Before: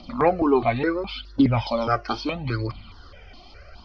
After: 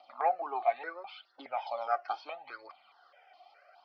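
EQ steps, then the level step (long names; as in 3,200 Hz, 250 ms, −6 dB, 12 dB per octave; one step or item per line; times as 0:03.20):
four-pole ladder band-pass 830 Hz, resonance 65%
spectral tilt +4.5 dB per octave
parametric band 1,000 Hz −8.5 dB 0.25 octaves
+1.5 dB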